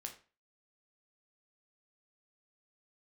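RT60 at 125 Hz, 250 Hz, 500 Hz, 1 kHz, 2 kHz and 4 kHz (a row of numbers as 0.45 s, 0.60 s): 0.35 s, 0.35 s, 0.35 s, 0.35 s, 0.35 s, 0.30 s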